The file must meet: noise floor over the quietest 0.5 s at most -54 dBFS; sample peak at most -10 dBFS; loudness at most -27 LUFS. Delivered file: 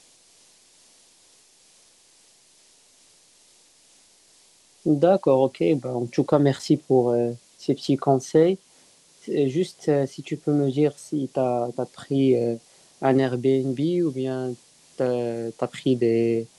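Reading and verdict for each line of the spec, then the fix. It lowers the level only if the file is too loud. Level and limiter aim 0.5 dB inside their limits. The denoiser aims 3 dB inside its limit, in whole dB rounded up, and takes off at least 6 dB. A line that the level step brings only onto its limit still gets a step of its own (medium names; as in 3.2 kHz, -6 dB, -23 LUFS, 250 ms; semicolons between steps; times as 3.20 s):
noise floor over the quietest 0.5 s -57 dBFS: pass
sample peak -6.0 dBFS: fail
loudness -23.5 LUFS: fail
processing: trim -4 dB; peak limiter -10.5 dBFS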